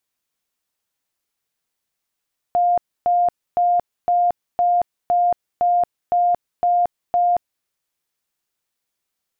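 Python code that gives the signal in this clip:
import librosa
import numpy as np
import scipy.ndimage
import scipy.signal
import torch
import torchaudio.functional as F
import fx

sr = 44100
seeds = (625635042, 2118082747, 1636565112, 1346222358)

y = fx.tone_burst(sr, hz=705.0, cycles=160, every_s=0.51, bursts=10, level_db=-13.5)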